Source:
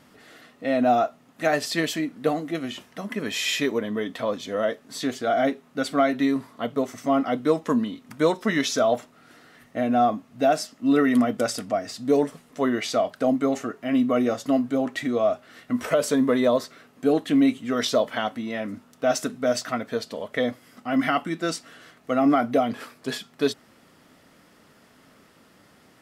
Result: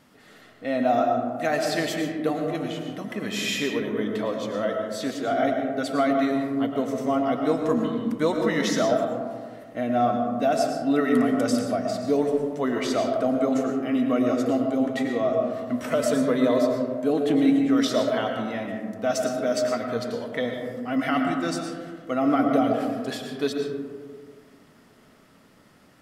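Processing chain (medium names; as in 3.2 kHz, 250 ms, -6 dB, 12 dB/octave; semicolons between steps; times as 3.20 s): on a send: bass shelf 200 Hz +7 dB + reverberation RT60 1.8 s, pre-delay 70 ms, DRR 2.5 dB; on the sum: trim -3 dB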